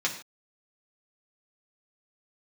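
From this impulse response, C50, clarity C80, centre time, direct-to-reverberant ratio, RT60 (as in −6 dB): 9.5 dB, 12.5 dB, 17 ms, −2.5 dB, non-exponential decay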